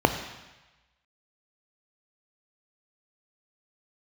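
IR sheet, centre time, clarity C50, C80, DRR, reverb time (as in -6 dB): 16 ms, 10.0 dB, 11.0 dB, 8.0 dB, 1.1 s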